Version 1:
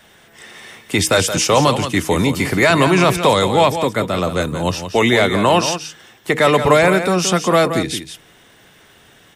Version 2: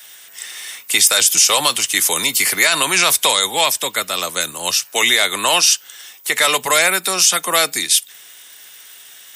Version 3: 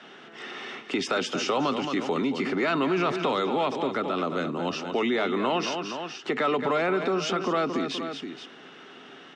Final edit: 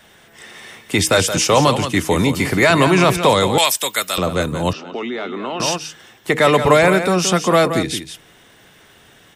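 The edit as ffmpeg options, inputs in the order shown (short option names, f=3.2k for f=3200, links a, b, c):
-filter_complex "[0:a]asplit=3[a][b][c];[a]atrim=end=3.582[d];[1:a]atrim=start=3.578:end=4.182[e];[b]atrim=start=4.178:end=4.732[f];[2:a]atrim=start=4.728:end=5.602[g];[c]atrim=start=5.598[h];[d][e]acrossfade=d=0.004:c1=hsin:c2=hsin[i];[i][f]acrossfade=d=0.004:c1=hsin:c2=hsin[j];[j][g]acrossfade=d=0.004:c1=hsin:c2=hsin[k];[k][h]acrossfade=d=0.004:c1=hsin:c2=hsin"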